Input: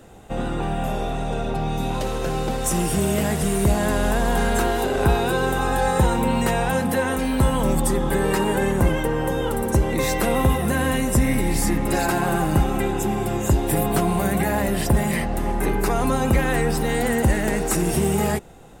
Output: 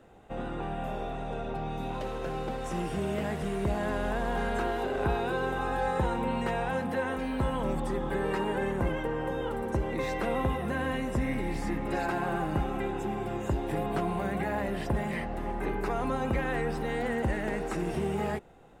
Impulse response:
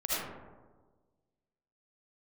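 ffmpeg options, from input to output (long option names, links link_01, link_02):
-filter_complex "[0:a]acrossover=split=7500[link_01][link_02];[link_02]acompressor=threshold=-38dB:ratio=4:attack=1:release=60[link_03];[link_01][link_03]amix=inputs=2:normalize=0,bass=frequency=250:gain=-4,treble=frequency=4000:gain=-12,volume=-8dB"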